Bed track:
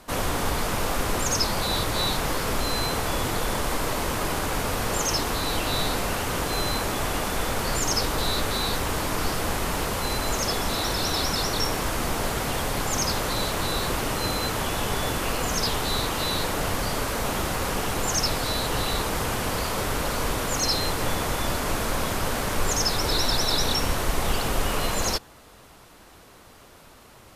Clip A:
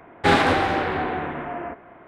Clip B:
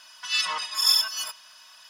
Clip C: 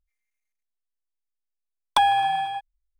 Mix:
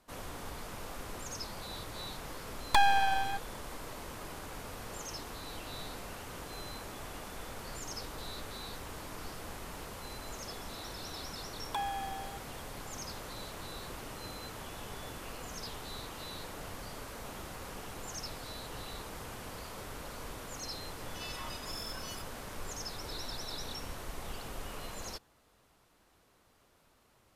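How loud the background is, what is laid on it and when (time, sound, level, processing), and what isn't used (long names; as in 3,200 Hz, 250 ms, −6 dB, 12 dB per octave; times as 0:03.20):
bed track −17.5 dB
0:00.78: mix in C −1 dB + half-wave rectification
0:09.78: mix in C −17 dB
0:20.91: mix in B −13.5 dB + downward compressor, threshold −27 dBFS
not used: A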